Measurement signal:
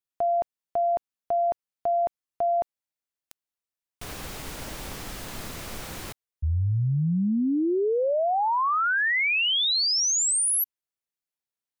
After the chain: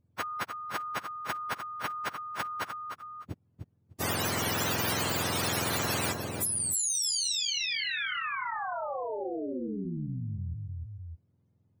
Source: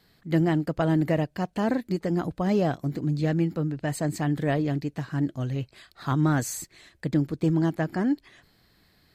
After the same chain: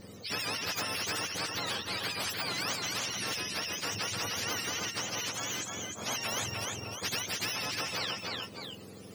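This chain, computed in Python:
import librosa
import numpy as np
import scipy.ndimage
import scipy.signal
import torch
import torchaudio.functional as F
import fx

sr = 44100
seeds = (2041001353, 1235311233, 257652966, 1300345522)

p1 = fx.octave_mirror(x, sr, pivot_hz=920.0)
p2 = p1 + fx.echo_feedback(p1, sr, ms=302, feedback_pct=17, wet_db=-10.0, dry=0)
p3 = fx.spectral_comp(p2, sr, ratio=4.0)
y = p3 * librosa.db_to_amplitude(-6.5)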